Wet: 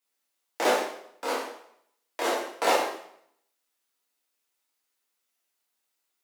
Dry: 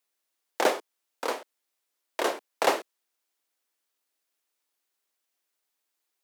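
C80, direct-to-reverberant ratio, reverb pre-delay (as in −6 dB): 6.0 dB, −6.5 dB, 5 ms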